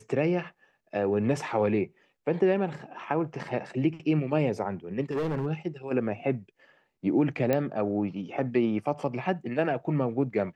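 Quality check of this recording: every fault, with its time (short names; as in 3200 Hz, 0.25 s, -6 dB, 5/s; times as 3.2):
5.11–5.47 clipped -25.5 dBFS
7.53 pop -13 dBFS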